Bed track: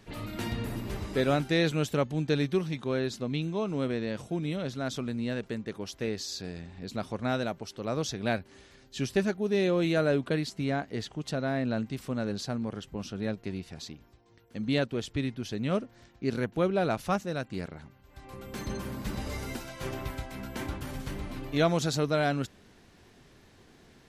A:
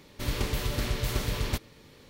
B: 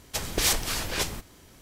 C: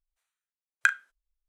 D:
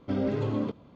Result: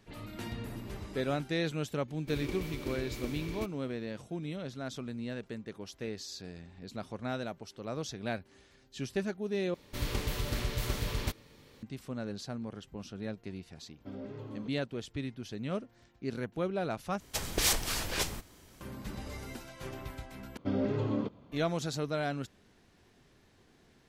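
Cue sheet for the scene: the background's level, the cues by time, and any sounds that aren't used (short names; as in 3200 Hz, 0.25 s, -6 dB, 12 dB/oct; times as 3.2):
bed track -6.5 dB
2.08 add A -13.5 dB + small resonant body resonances 320/2300 Hz, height 17 dB
9.74 replace with A -4 dB
13.97 add D -15 dB
17.2 replace with B -4 dB
20.57 replace with D -3 dB
not used: C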